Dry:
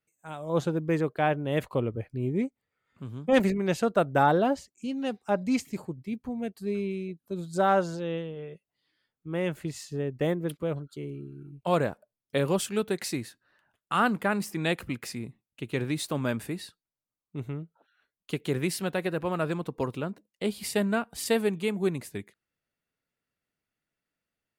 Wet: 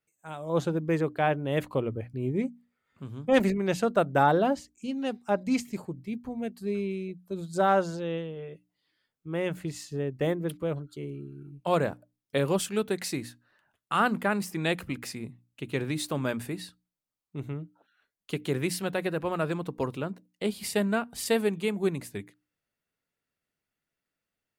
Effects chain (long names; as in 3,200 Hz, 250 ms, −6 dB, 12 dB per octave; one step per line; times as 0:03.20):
mains-hum notches 60/120/180/240/300 Hz